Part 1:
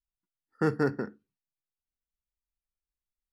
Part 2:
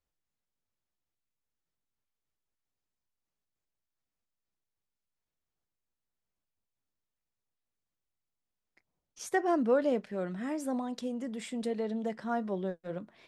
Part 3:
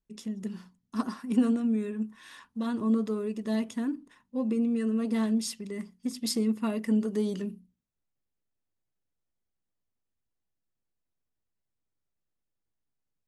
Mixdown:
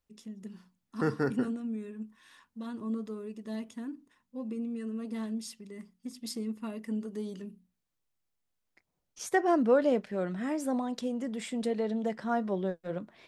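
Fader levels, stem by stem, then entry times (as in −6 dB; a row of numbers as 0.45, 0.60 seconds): −3.0, +2.5, −8.5 decibels; 0.40, 0.00, 0.00 seconds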